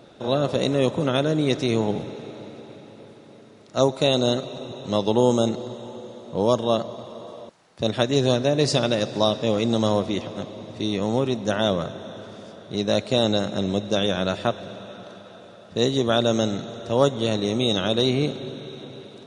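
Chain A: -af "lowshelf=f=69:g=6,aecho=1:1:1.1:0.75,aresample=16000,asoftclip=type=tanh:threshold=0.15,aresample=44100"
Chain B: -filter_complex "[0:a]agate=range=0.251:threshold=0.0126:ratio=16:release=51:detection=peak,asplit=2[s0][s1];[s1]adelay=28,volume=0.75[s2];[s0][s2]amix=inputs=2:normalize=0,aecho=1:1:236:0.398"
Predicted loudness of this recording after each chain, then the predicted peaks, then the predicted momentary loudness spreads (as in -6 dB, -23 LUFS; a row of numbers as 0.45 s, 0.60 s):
-25.0 LUFS, -20.5 LUFS; -14.5 dBFS, -2.0 dBFS; 16 LU, 13 LU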